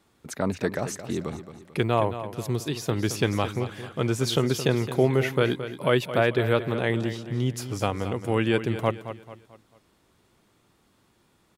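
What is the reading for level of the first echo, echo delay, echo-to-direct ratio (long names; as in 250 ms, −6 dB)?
−11.5 dB, 220 ms, −11.0 dB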